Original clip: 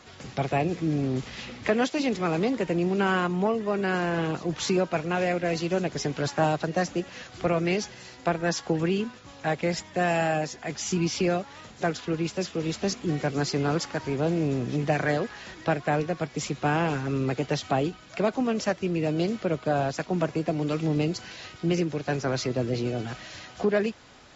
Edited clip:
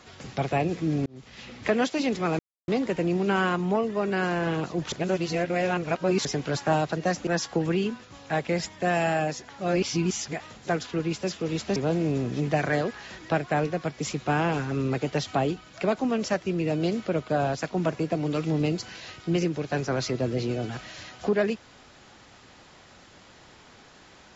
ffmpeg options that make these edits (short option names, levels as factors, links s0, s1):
-filter_complex "[0:a]asplit=9[s0][s1][s2][s3][s4][s5][s6][s7][s8];[s0]atrim=end=1.06,asetpts=PTS-STARTPTS,afade=t=out:st=1.056:d=0.004:c=hsin[s9];[s1]atrim=start=1.06:end=2.39,asetpts=PTS-STARTPTS,afade=t=in:d=0.65,afade=t=out:st=1.326:d=0.004:c=hsin,apad=pad_dur=0.29[s10];[s2]atrim=start=2.39:end=4.632,asetpts=PTS-STARTPTS,afade=t=in:d=0.004:c=hsin[s11];[s3]atrim=start=4.628:end=5.962,asetpts=PTS-STARTPTS,areverse[s12];[s4]atrim=start=5.958:end=6.982[s13];[s5]atrim=start=8.408:end=10.632[s14];[s6]atrim=start=10.628:end=11.542,asetpts=PTS-STARTPTS,areverse[s15];[s7]atrim=start=11.538:end=12.902[s16];[s8]atrim=start=14.118[s17];[s9][s10][s11]concat=n=3:v=0:a=1[s18];[s18][s12]acrossfade=d=0.004:c1=hsin:c2=hsin[s19];[s19][s13]acrossfade=d=0.004:c1=hsin:c2=hsin[s20];[s20][s14]acrossfade=d=0.004:c1=hsin:c2=hsin[s21];[s21][s15]acrossfade=d=0.004:c1=hsin:c2=hsin[s22];[s22][s16]acrossfade=d=0.004:c1=hsin:c2=hsin[s23];[s23][s17]acrossfade=d=0.004:c1=hsin:c2=hsin"